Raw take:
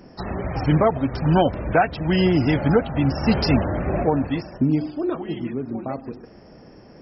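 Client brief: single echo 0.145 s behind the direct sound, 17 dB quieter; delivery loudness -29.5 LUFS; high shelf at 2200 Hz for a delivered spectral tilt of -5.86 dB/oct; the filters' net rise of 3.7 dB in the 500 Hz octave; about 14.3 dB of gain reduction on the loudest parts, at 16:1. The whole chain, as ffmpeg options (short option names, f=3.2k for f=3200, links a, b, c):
-af "equalizer=f=500:t=o:g=4.5,highshelf=f=2.2k:g=5,acompressor=threshold=-23dB:ratio=16,aecho=1:1:145:0.141,volume=-1dB"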